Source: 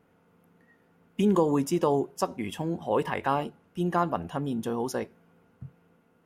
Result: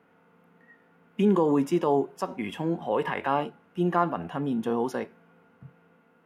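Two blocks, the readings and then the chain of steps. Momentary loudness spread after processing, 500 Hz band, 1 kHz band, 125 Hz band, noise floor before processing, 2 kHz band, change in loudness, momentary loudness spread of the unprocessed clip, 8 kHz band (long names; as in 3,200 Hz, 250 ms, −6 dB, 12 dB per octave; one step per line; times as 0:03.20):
10 LU, +1.0 dB, +1.0 dB, −0.5 dB, −65 dBFS, +2.0 dB, +1.0 dB, 9 LU, can't be measured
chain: three-way crossover with the lows and the highs turned down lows −15 dB, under 190 Hz, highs −12 dB, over 3,000 Hz
in parallel at 0 dB: brickwall limiter −21 dBFS, peak gain reduction 9 dB
on the sum: parametric band 390 Hz −5.5 dB 2.4 octaves
harmonic and percussive parts rebalanced harmonic +7 dB
level −3 dB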